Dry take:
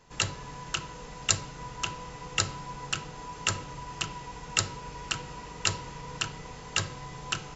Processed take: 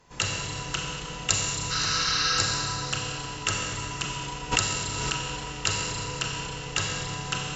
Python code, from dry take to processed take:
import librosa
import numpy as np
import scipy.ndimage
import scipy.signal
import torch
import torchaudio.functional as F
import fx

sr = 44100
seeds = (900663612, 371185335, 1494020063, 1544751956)

y = fx.spec_repair(x, sr, seeds[0], start_s=1.73, length_s=0.64, low_hz=980.0, high_hz=6300.0, source='after')
y = fx.cheby_harmonics(y, sr, harmonics=(2,), levels_db=(-36,), full_scale_db=-2.0)
y = fx.rev_schroeder(y, sr, rt60_s=2.6, comb_ms=30, drr_db=-1.5)
y = fx.pre_swell(y, sr, db_per_s=27.0, at=(4.51, 5.28), fade=0.02)